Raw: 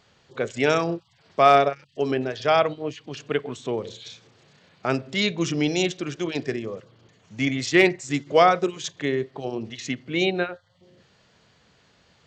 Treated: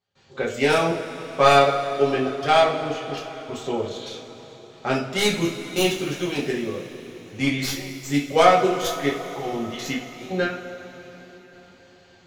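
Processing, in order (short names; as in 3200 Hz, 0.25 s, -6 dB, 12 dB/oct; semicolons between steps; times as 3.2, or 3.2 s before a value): tracing distortion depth 0.085 ms; step gate ".xxxxx..xxxxxxx" 99 bpm -24 dB; two-slope reverb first 0.33 s, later 4.5 s, from -19 dB, DRR -5.5 dB; gain -3.5 dB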